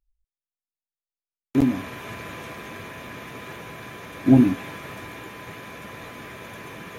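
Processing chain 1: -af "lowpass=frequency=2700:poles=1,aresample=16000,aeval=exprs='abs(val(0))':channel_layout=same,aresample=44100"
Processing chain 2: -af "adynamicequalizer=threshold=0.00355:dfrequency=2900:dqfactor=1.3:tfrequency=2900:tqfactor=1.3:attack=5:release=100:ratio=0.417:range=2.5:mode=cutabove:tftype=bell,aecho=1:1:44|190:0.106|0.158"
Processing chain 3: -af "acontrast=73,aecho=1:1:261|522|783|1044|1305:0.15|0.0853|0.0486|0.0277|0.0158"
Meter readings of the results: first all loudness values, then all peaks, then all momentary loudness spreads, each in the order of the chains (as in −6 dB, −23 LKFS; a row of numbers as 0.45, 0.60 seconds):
−29.0, −22.0, −20.0 LKFS; −3.5, −3.5, −1.5 dBFS; 20, 22, 19 LU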